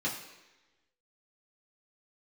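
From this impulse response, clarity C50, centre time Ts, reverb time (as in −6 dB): 6.5 dB, 32 ms, 1.1 s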